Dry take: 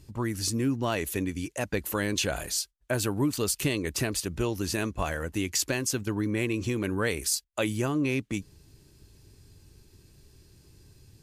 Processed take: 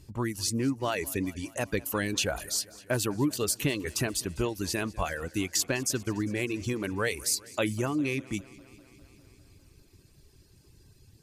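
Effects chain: reverb removal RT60 1 s; warbling echo 0.201 s, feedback 71%, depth 73 cents, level -21.5 dB

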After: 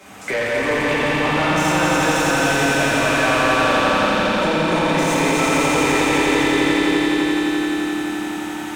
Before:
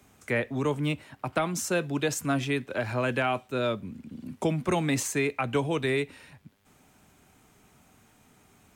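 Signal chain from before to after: reverb RT60 2.9 s, pre-delay 5 ms, DRR -10 dB; compressor 2:1, threshold -24 dBFS, peak gain reduction 8 dB; overdrive pedal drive 23 dB, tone 2900 Hz, clips at -9.5 dBFS; limiter -16.5 dBFS, peak gain reduction 6.5 dB; swelling echo 86 ms, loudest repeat 5, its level -4.5 dB

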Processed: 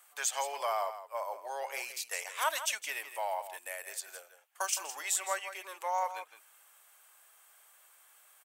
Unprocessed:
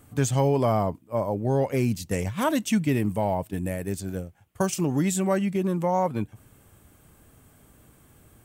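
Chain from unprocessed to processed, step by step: Bessel high-pass 1100 Hz, order 6; echo 0.164 s -11.5 dB

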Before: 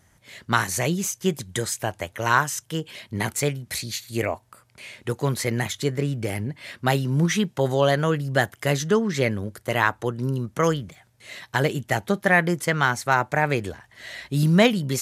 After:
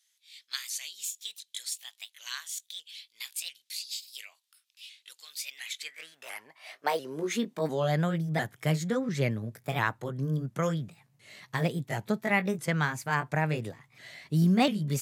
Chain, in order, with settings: repeated pitch sweeps +3 st, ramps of 0.699 s; high-pass sweep 3600 Hz -> 130 Hz, 5.43–8.05; gain -8 dB

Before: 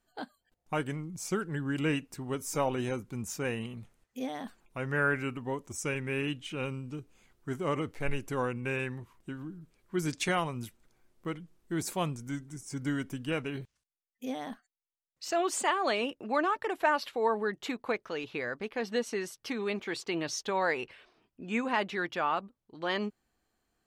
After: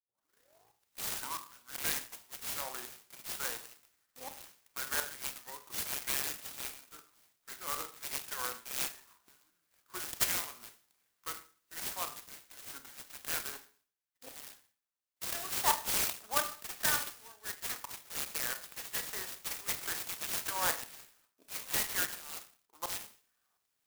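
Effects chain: tape start at the beginning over 1.82 s; dynamic EQ 1200 Hz, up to -6 dB, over -43 dBFS, Q 1.3; LFO high-pass saw down 1.4 Hz 960–5000 Hz; Schroeder reverb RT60 0.43 s, combs from 26 ms, DRR 8 dB; clock jitter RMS 0.12 ms

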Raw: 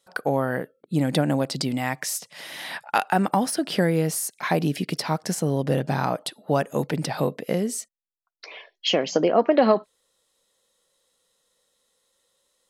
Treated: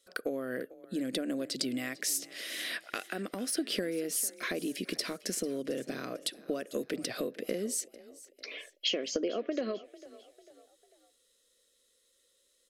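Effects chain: compressor, threshold -27 dBFS, peak gain reduction 14 dB; fixed phaser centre 360 Hz, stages 4; on a send: frequency-shifting echo 0.447 s, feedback 44%, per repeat +31 Hz, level -19 dB

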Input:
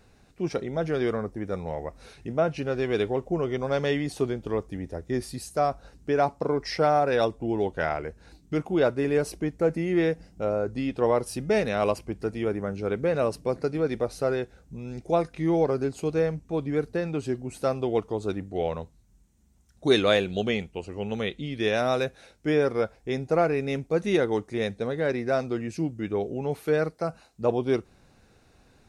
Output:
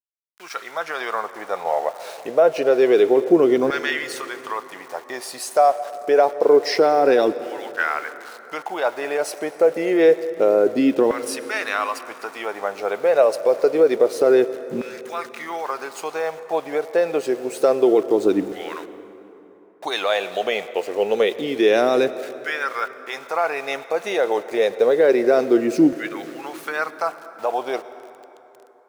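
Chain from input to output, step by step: in parallel at +1 dB: compressor 4:1, threshold -36 dBFS, peak gain reduction 17.5 dB; on the sum: limiter -16 dBFS, peak gain reduction 8.5 dB; AGC gain up to 7.5 dB; sample gate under -35 dBFS; LFO high-pass saw down 0.27 Hz 280–1600 Hz; on a send at -14 dB: reverb RT60 3.5 s, pre-delay 93 ms; on the sum: gain -2.5 dB

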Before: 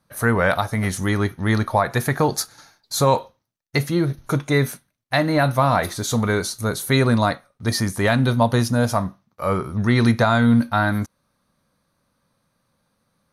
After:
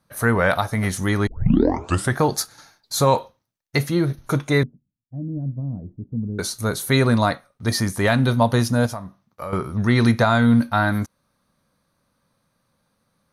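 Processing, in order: 1.27 tape start 0.92 s; 4.63–6.39 ladder low-pass 310 Hz, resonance 25%; 8.86–9.53 compressor 6:1, threshold -29 dBFS, peak gain reduction 13 dB

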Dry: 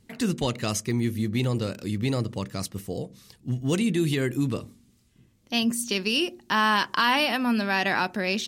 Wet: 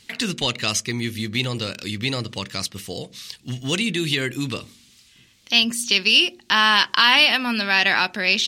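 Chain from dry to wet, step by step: bell 3400 Hz +14 dB 2.5 oct; mismatched tape noise reduction encoder only; gain -2 dB

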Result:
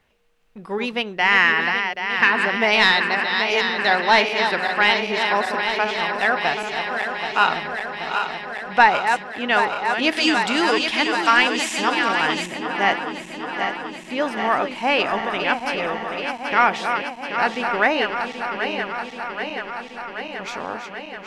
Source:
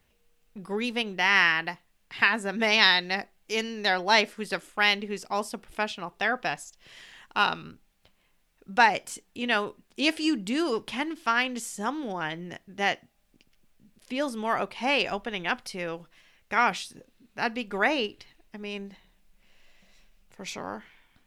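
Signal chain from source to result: regenerating reverse delay 0.39 s, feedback 84%, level -7.5 dB; 10.12–12.46 bell 5900 Hz +9.5 dB 2.7 oct; overdrive pedal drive 8 dB, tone 1700 Hz, clips at -3.5 dBFS; gain +5.5 dB

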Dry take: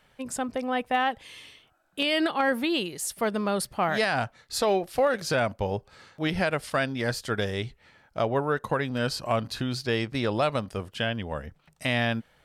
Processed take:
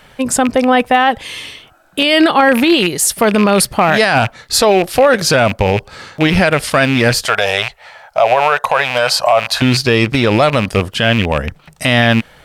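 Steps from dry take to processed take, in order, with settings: rattling part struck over -35 dBFS, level -26 dBFS; 7.25–9.62 resonant low shelf 450 Hz -14 dB, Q 3; maximiser +19.5 dB; gain -1 dB

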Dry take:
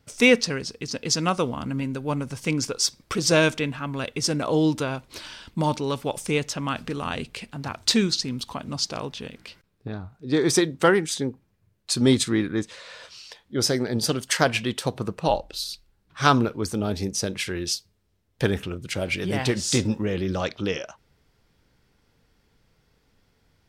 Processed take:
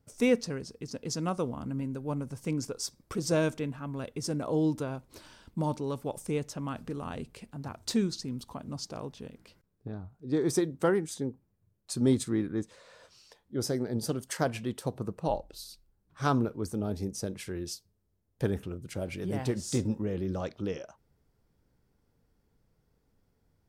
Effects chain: bell 3000 Hz -12 dB 2.5 oct; gain -5.5 dB

